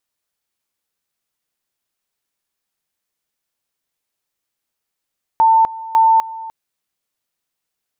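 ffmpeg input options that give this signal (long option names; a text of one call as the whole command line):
ffmpeg -f lavfi -i "aevalsrc='pow(10,(-8-18.5*gte(mod(t,0.55),0.25))/20)*sin(2*PI*896*t)':duration=1.1:sample_rate=44100" out.wav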